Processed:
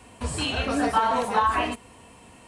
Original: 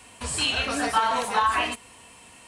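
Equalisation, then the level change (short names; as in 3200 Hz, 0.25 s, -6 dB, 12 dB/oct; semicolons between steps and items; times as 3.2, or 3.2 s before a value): tilt shelf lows +6 dB, about 1100 Hz; 0.0 dB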